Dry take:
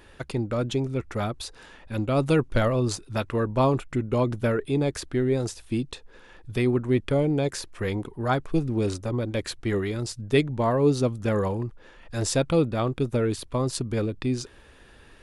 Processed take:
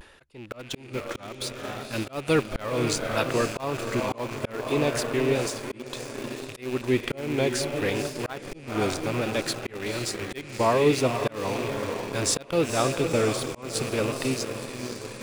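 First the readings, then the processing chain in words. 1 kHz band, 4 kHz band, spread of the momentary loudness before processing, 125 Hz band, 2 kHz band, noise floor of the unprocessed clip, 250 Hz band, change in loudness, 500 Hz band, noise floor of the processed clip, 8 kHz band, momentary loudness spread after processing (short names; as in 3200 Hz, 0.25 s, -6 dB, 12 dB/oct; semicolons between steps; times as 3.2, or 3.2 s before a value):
+1.0 dB, +4.0 dB, 9 LU, -6.5 dB, +3.5 dB, -52 dBFS, -3.0 dB, -1.5 dB, -0.5 dB, -46 dBFS, +5.0 dB, 11 LU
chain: rattling part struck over -32 dBFS, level -30 dBFS; low shelf 290 Hz -11 dB; diffused feedback echo 0.509 s, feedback 59%, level -7 dB; reverse; upward compressor, threshold -34 dBFS; reverse; auto swell 0.278 s; vibrato 0.65 Hz 51 cents; in parallel at -4 dB: sample gate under -32.5 dBFS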